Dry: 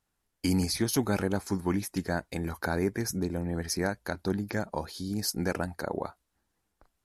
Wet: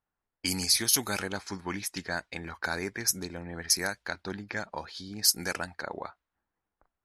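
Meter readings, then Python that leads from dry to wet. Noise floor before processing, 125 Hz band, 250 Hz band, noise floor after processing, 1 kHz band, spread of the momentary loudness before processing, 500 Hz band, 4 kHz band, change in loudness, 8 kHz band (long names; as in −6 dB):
−80 dBFS, −9.0 dB, −8.5 dB, below −85 dBFS, −1.5 dB, 7 LU, −6.0 dB, +8.0 dB, +1.5 dB, +8.5 dB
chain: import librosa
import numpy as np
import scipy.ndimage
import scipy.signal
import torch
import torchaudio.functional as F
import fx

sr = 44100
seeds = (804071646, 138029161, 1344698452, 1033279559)

y = fx.tilt_shelf(x, sr, db=-9.5, hz=1100.0)
y = fx.env_lowpass(y, sr, base_hz=1000.0, full_db=-24.5)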